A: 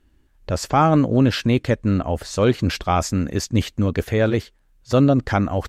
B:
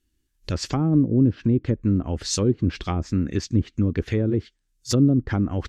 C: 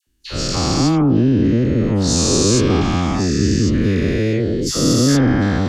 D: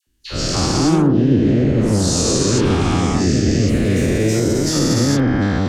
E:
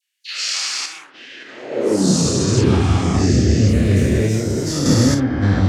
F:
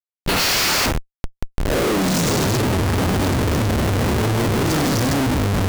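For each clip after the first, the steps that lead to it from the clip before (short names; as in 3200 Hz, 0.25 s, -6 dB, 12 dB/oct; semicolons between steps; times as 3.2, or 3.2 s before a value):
spectral noise reduction 12 dB; treble ducked by the level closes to 470 Hz, closed at -13.5 dBFS; EQ curve 240 Hz 0 dB, 340 Hz +2 dB, 630 Hz -11 dB, 5900 Hz +13 dB; gain -1.5 dB
spectral dilation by 0.48 s; dispersion lows, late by 72 ms, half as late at 1200 Hz
limiter -8 dBFS, peak gain reduction 4.5 dB; echoes that change speed 0.13 s, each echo +2 st, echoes 3, each echo -6 dB
high-pass sweep 2200 Hz -> 80 Hz, 1.33–2.38; chorus voices 4, 1.5 Hz, delay 29 ms, depth 3 ms; random-step tremolo; gain +3.5 dB
Schmitt trigger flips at -26 dBFS; gain -1.5 dB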